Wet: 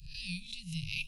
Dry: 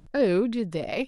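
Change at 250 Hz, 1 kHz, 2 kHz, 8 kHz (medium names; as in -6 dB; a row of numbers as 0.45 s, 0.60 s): -18.5 dB, under -40 dB, -5.0 dB, no reading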